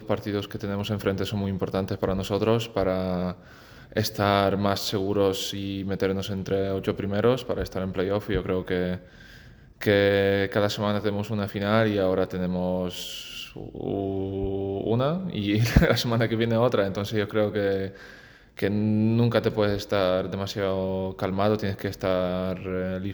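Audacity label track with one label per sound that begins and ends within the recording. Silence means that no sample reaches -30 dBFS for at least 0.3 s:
3.960000	8.960000	sound
9.810000	17.880000	sound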